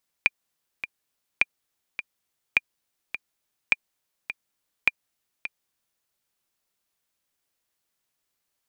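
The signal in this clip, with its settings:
click track 104 BPM, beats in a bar 2, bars 5, 2,400 Hz, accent 12.5 dB −4.5 dBFS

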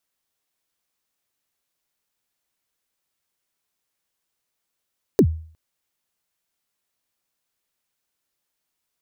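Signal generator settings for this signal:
synth kick length 0.36 s, from 470 Hz, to 80 Hz, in 71 ms, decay 0.48 s, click on, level −7.5 dB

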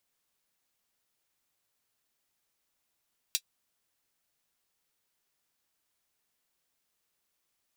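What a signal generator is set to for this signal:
closed synth hi-hat, high-pass 3,500 Hz, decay 0.07 s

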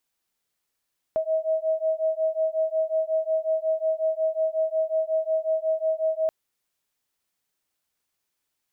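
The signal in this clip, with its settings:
two tones that beat 635 Hz, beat 5.5 Hz, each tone −25 dBFS 5.13 s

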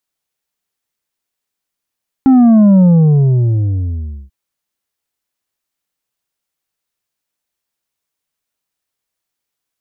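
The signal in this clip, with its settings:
bass drop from 270 Hz, over 2.04 s, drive 5.5 dB, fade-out 1.51 s, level −5 dB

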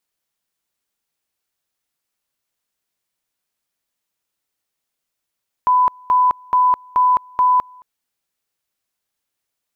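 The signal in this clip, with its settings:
tone at two levels in turn 1,000 Hz −10.5 dBFS, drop 29 dB, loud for 0.21 s, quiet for 0.22 s, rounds 5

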